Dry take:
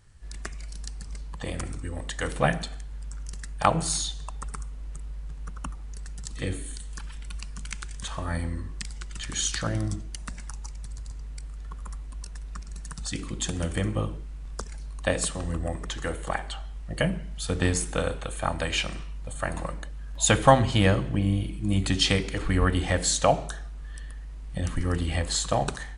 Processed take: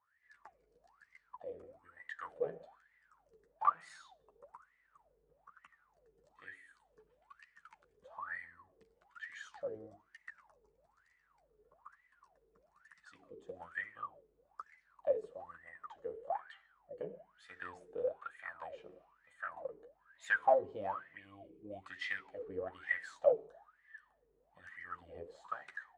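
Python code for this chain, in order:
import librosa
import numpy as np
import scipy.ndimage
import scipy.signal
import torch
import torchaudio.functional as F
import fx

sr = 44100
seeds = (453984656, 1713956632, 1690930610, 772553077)

y = fx.chorus_voices(x, sr, voices=6, hz=0.21, base_ms=12, depth_ms=1.8, mix_pct=35)
y = fx.tube_stage(y, sr, drive_db=15.0, bias=0.5)
y = fx.wah_lfo(y, sr, hz=1.1, low_hz=420.0, high_hz=2000.0, q=21.0)
y = F.gain(torch.from_numpy(y), 8.5).numpy()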